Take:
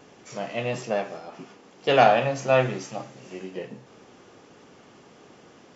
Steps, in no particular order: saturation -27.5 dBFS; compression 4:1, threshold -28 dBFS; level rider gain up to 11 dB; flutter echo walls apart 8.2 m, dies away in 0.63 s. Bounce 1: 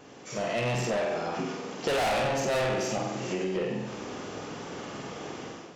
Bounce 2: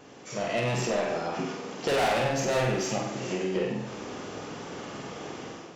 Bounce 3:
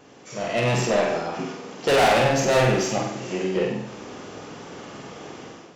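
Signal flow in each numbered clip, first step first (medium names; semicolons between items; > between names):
flutter echo > saturation > level rider > compression; saturation > level rider > compression > flutter echo; saturation > compression > flutter echo > level rider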